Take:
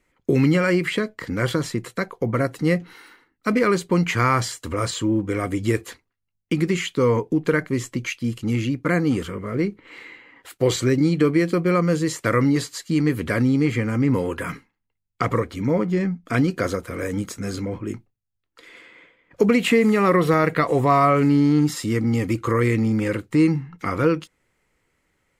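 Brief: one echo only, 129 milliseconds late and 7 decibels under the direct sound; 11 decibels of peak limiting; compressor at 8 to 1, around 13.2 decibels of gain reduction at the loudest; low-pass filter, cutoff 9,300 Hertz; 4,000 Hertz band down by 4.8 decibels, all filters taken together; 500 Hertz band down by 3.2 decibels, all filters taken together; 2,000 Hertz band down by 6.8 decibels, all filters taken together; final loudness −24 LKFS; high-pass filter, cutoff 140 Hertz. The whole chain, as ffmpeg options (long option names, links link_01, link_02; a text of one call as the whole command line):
ffmpeg -i in.wav -af "highpass=140,lowpass=9300,equalizer=frequency=500:width_type=o:gain=-3.5,equalizer=frequency=2000:width_type=o:gain=-7.5,equalizer=frequency=4000:width_type=o:gain=-3.5,acompressor=threshold=-29dB:ratio=8,alimiter=level_in=0.5dB:limit=-24dB:level=0:latency=1,volume=-0.5dB,aecho=1:1:129:0.447,volume=10.5dB" out.wav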